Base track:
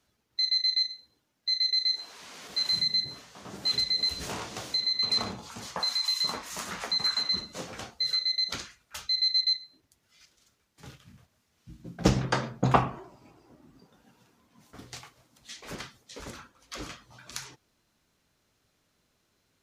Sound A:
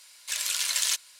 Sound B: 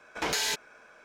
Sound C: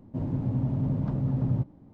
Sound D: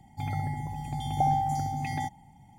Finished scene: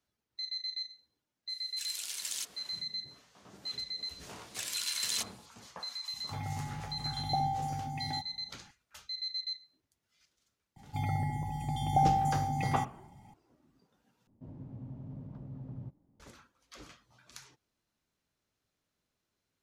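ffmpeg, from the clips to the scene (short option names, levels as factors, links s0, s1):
-filter_complex "[1:a]asplit=2[s0][s1];[4:a]asplit=2[s2][s3];[0:a]volume=0.251[s4];[s0]equalizer=f=840:w=0.36:g=-8.5[s5];[s3]asuperstop=centerf=1600:order=4:qfactor=5.9[s6];[s4]asplit=2[s7][s8];[s7]atrim=end=14.274[s9];[3:a]atrim=end=1.93,asetpts=PTS-STARTPTS,volume=0.133[s10];[s8]atrim=start=16.196[s11];[s5]atrim=end=1.19,asetpts=PTS-STARTPTS,volume=0.316,afade=t=in:d=0.004:c=hsin,afade=t=out:st=1.186:d=0.004:c=hsin,adelay=1490[s12];[s1]atrim=end=1.19,asetpts=PTS-STARTPTS,volume=0.376,afade=t=in:d=0.004:c=hsin,afade=t=out:st=1.186:d=0.004:c=hsin,adelay=4270[s13];[s2]atrim=end=2.58,asetpts=PTS-STARTPTS,volume=0.473,afade=t=in:d=0.004:c=hsin,afade=t=out:st=2.576:d=0.004:c=hsin,adelay=6130[s14];[s6]atrim=end=2.58,asetpts=PTS-STARTPTS,volume=0.891,afade=t=in:d=0.004:c=hsin,afade=t=out:st=2.576:d=0.004:c=hsin,adelay=10760[s15];[s9][s10]acrossfade=d=0.004:c1=hsin:c2=hsin[s16];[s16][s11]acrossfade=d=0.004:c1=hsin:c2=hsin[s17];[s17][s12][s13][s14][s15]amix=inputs=5:normalize=0"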